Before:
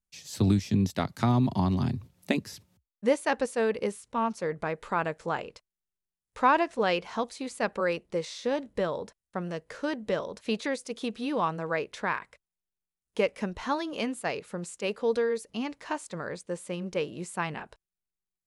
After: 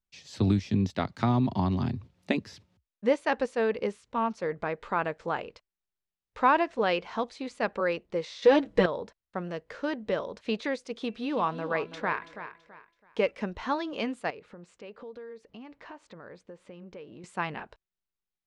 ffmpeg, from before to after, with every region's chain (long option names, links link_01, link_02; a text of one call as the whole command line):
ffmpeg -i in.wav -filter_complex "[0:a]asettb=1/sr,asplit=3[link_01][link_02][link_03];[link_01]atrim=end=8.424[link_04];[link_02]atrim=start=8.42:end=8.86,asetpts=PTS-STARTPTS,afade=type=in:duration=0.004:curve=qsin,afade=type=out:start_time=0.436:duration=0.004:curve=qsin,aecho=1:1:6.2:0.8,atrim=end_sample=19404,acontrast=82[link_05];[link_03]atrim=start=8.856[link_06];[link_04][link_05]acrossfade=duration=0.004:curve1=hsin:curve2=qsin[link_07];[link_07][link_06]acrossfade=duration=0.004:curve1=qsin:curve2=hsin,asettb=1/sr,asplit=3[link_08][link_09][link_10];[link_08]atrim=end=10.954[link_11];[link_09]atrim=start=10.95:end=13.31,asetpts=PTS-STARTPTS,afade=type=in:duration=0.004:curve=qsin,afade=type=out:start_time=2.356:duration=0.004:curve=qsin,bandreject=frequency=336.4:width_type=h:width=4,bandreject=frequency=672.8:width_type=h:width=4,bandreject=frequency=1009.2:width_type=h:width=4,bandreject=frequency=1345.6:width_type=h:width=4,bandreject=frequency=1682:width_type=h:width=4,bandreject=frequency=2018.4:width_type=h:width=4,bandreject=frequency=2354.8:width_type=h:width=4,bandreject=frequency=2691.2:width_type=h:width=4,aecho=1:1:330|660|990:0.266|0.0798|0.0239,atrim=end_sample=104076[link_12];[link_10]atrim=start=13.306[link_13];[link_11][link_12]acrossfade=duration=0.004:curve1=hsin:curve2=qsin[link_14];[link_14][link_13]acrossfade=duration=0.004:curve1=qsin:curve2=hsin,asettb=1/sr,asplit=3[link_15][link_16][link_17];[link_15]atrim=end=14.304[link_18];[link_16]atrim=start=14.3:end=17.24,asetpts=PTS-STARTPTS,afade=type=in:duration=0.004:curve=qsin,afade=type=out:start_time=2.936:duration=0.004:curve=qsin,lowpass=frequency=2500:poles=1,acompressor=threshold=-43dB:ratio=4:attack=3.2:release=140:knee=1:detection=peak[link_19];[link_17]atrim=start=17.236[link_20];[link_18][link_19]acrossfade=duration=0.004:curve1=hsin:curve2=qsin[link_21];[link_21][link_20]acrossfade=duration=0.004:curve1=qsin:curve2=hsin,lowpass=4400,equalizer=frequency=150:width_type=o:width=0.72:gain=-3" out.wav